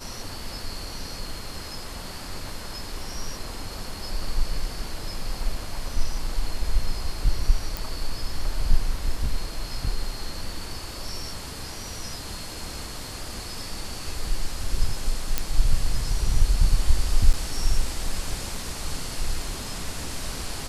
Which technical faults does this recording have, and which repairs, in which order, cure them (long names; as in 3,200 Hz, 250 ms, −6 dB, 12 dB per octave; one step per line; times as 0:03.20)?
0:07.77: click
0:15.38: click −7 dBFS
0:17.33–0:17.34: drop-out 7.7 ms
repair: click removal
repair the gap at 0:17.33, 7.7 ms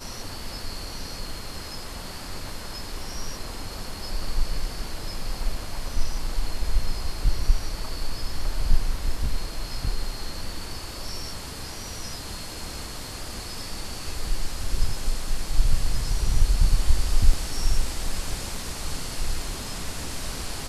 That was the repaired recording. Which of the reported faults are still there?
none of them is left